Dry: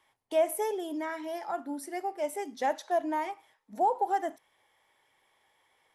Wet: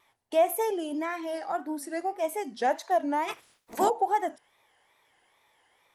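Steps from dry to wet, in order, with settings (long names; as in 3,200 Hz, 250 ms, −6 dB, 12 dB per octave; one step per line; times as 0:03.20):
0:03.27–0:03.89: ceiling on every frequency bin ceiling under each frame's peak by 26 dB
tape wow and flutter 130 cents
level +3 dB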